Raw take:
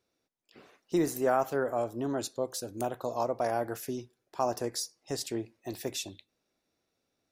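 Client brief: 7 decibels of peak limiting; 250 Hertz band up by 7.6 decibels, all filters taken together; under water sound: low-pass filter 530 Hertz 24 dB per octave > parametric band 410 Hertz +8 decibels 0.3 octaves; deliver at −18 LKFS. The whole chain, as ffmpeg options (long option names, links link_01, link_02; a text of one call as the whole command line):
ffmpeg -i in.wav -af "equalizer=frequency=250:width_type=o:gain=8.5,alimiter=limit=-20dB:level=0:latency=1,lowpass=frequency=530:width=0.5412,lowpass=frequency=530:width=1.3066,equalizer=frequency=410:width_type=o:width=0.3:gain=8,volume=13dB" out.wav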